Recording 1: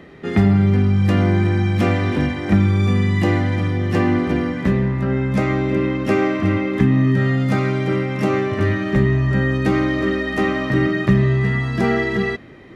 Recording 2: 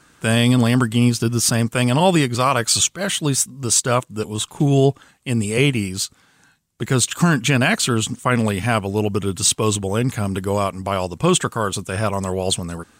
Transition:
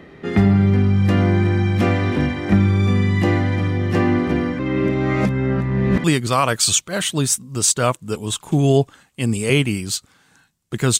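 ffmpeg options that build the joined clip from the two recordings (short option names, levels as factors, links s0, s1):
-filter_complex "[0:a]apad=whole_dur=10.99,atrim=end=10.99,asplit=2[s0][s1];[s0]atrim=end=4.592[s2];[s1]atrim=start=4.588:end=6.042,asetpts=PTS-STARTPTS,areverse[s3];[1:a]atrim=start=2.118:end=7.07[s4];[s2][s3]acrossfade=d=0.004:c1=hsin:c2=hsin[s5];[s5][s4]acrossfade=d=0.004:c1=hsin:c2=hsin"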